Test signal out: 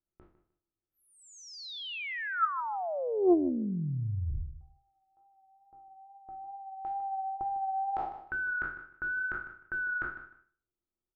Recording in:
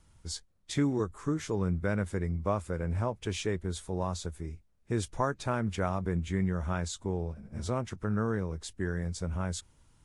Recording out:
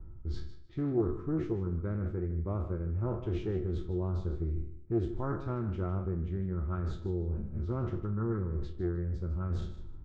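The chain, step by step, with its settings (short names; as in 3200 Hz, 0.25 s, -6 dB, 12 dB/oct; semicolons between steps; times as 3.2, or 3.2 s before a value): spectral trails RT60 0.44 s; low-pass opened by the level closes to 1100 Hz, open at -29.5 dBFS; RIAA curve playback; reverse; compressor 12:1, threshold -31 dBFS; reverse; small resonant body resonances 350/1300 Hz, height 15 dB, ringing for 80 ms; wow and flutter 24 cents; air absorption 140 m; on a send: feedback echo 0.153 s, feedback 20%, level -12.5 dB; on the sum: Doppler distortion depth 0.22 ms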